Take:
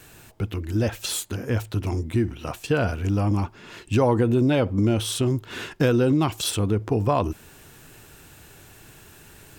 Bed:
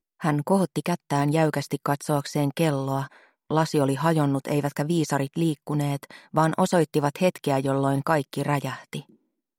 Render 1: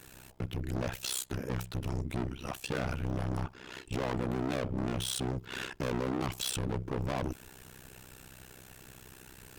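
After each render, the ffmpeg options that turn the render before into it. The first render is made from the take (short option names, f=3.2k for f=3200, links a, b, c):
-af "volume=27.5dB,asoftclip=hard,volume=-27.5dB,tremolo=f=64:d=1"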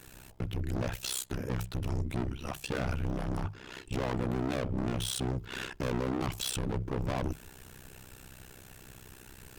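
-af "lowshelf=f=100:g=6,bandreject=f=50:t=h:w=6,bandreject=f=100:t=h:w=6,bandreject=f=150:t=h:w=6"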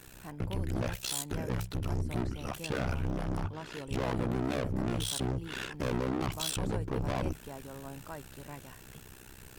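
-filter_complex "[1:a]volume=-22dB[a];[0:a][a]amix=inputs=2:normalize=0"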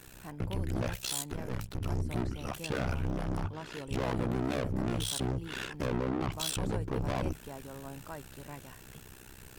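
-filter_complex "[0:a]asettb=1/sr,asplit=3[a][b][c];[a]atrim=end=1.314[d];[b]atrim=start=1.31:end=1.81,asetpts=PTS-STARTPTS,afade=t=in:d=0.004:c=qsin,afade=t=out:st=0.496:d=0.004:c=qsin,aeval=exprs='if(lt(val(0),0),0.251*val(0),val(0))':c=same[e];[c]atrim=start=1.806[f];[d][e]acrossfade=d=0.004:c1=hsin:c2=qsin[g];[g][f]acrossfade=d=0.004:c1=qsin:c2=hsin,asettb=1/sr,asplit=3[h][i][j];[h]atrim=end=5.864[k];[i]atrim=start=5.86:end=6.39,asetpts=PTS-STARTPTS,afade=t=in:d=0.004:c=qsin,afade=t=out:st=0.526:d=0.004:c=qsin,highshelf=f=4.7k:g=-10[l];[j]atrim=start=6.386[m];[k][l]acrossfade=d=0.004:c1=hsin:c2=qsin[n];[n][m]acrossfade=d=0.004:c1=qsin:c2=hsin"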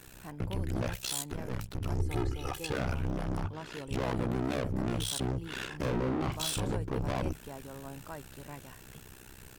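-filter_complex "[0:a]asettb=1/sr,asplit=3[a][b][c];[a]atrim=end=1.994[d];[b]atrim=start=1.99:end=2.72,asetpts=PTS-STARTPTS,afade=t=in:d=0.004:c=qsin,afade=t=out:st=0.726:d=0.004:c=qsin,aecho=1:1:2.4:0.79,atrim=end_sample=32193[e];[c]atrim=start=2.716[f];[d][e]acrossfade=d=0.004:c1=hsin:c2=qsin[g];[g][f]acrossfade=d=0.004:c1=qsin:c2=hsin,asplit=3[h][i][j];[h]afade=t=out:st=5.71:d=0.02[k];[i]asplit=2[l][m];[m]adelay=39,volume=-6dB[n];[l][n]amix=inputs=2:normalize=0,afade=t=in:st=5.71:d=0.02,afade=t=out:st=6.73:d=0.02[o];[j]afade=t=in:st=6.73:d=0.02[p];[k][o][p]amix=inputs=3:normalize=0"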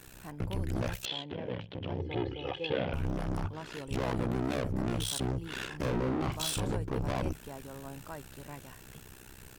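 -filter_complex "[0:a]asettb=1/sr,asplit=3[a][b][c];[a]atrim=end=1.054[d];[b]atrim=start=1.05:end=2.94,asetpts=PTS-STARTPTS,afade=t=in:d=0.004:c=qsin,afade=t=out:st=1.886:d=0.004:c=qsin,highpass=120,equalizer=f=520:t=q:w=4:g=8,equalizer=f=1.3k:t=q:w=4:g=-9,equalizer=f=3.2k:t=q:w=4:g=10,lowpass=f=3.4k:w=0.5412,lowpass=f=3.4k:w=1.3066[e];[c]atrim=start=2.936[f];[d][e]acrossfade=d=0.004:c1=hsin:c2=qsin[g];[g][f]acrossfade=d=0.004:c1=qsin:c2=hsin"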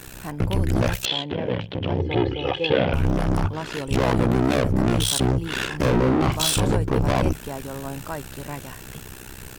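-af "volume=12dB"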